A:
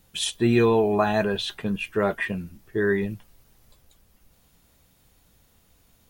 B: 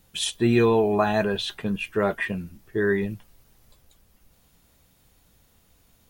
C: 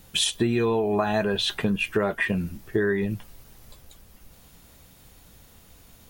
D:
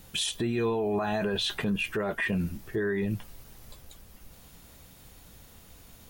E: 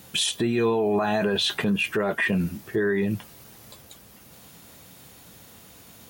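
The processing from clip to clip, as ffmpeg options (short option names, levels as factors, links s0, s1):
-af anull
-af "acompressor=threshold=0.0355:ratio=8,volume=2.66"
-af "alimiter=limit=0.0891:level=0:latency=1:release=18"
-af "highpass=120,volume=1.88"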